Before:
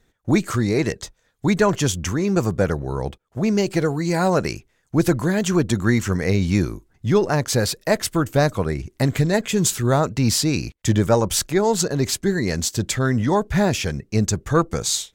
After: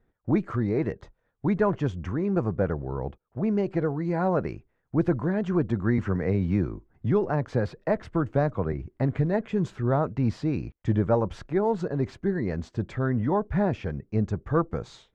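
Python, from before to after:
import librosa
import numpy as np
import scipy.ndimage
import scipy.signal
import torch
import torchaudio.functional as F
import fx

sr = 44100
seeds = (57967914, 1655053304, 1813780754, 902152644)

y = scipy.signal.sosfilt(scipy.signal.butter(2, 1400.0, 'lowpass', fs=sr, output='sos'), x)
y = fx.band_squash(y, sr, depth_pct=40, at=(5.98, 8.73))
y = y * librosa.db_to_amplitude(-5.5)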